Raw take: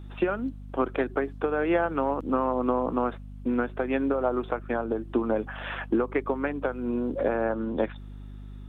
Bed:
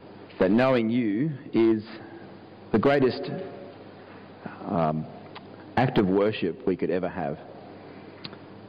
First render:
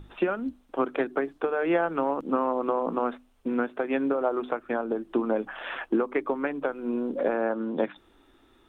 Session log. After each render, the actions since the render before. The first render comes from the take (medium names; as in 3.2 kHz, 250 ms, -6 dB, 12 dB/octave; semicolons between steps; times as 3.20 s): hum notches 50/100/150/200/250/300 Hz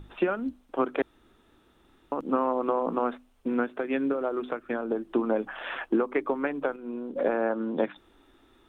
1.02–2.12 s: room tone; 3.63–4.82 s: dynamic bell 820 Hz, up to -7 dB, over -39 dBFS, Q 1.3; 6.76–7.16 s: gain -6.5 dB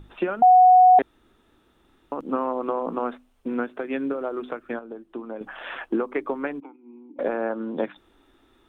0.42–0.99 s: bleep 736 Hz -9.5 dBFS; 4.79–5.41 s: gain -9 dB; 6.60–7.19 s: vowel filter u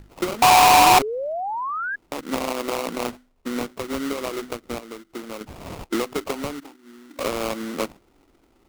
sample-rate reducer 1.7 kHz, jitter 20%; 0.78–1.96 s: painted sound rise 280–1700 Hz -27 dBFS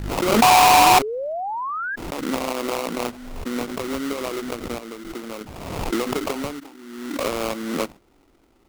swell ahead of each attack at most 43 dB/s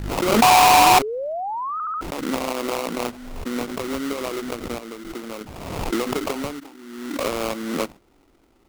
1.73 s: stutter in place 0.07 s, 4 plays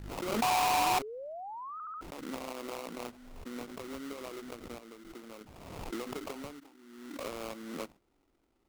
trim -15 dB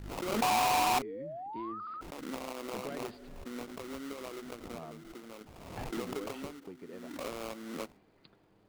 add bed -22 dB